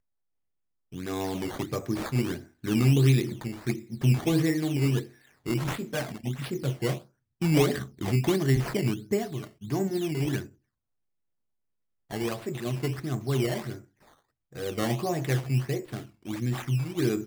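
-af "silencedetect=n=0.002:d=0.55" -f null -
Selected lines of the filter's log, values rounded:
silence_start: 0.00
silence_end: 0.92 | silence_duration: 0.92
silence_start: 10.55
silence_end: 12.10 | silence_duration: 1.55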